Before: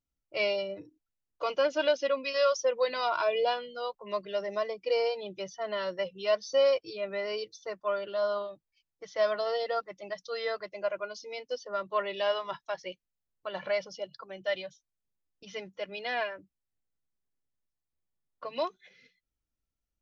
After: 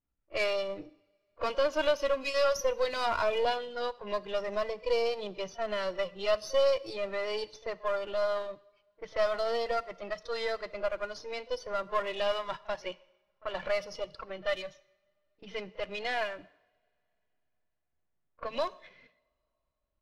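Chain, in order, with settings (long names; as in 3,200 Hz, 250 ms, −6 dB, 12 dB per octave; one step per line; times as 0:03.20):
gain on one half-wave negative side −7 dB
in parallel at −1 dB: downward compressor, threshold −39 dBFS, peak gain reduction 16 dB
on the sum: echo ahead of the sound 39 ms −21.5 dB
low-pass that shuts in the quiet parts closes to 2,000 Hz, open at −27 dBFS
on a send at −17.5 dB: convolution reverb, pre-delay 3 ms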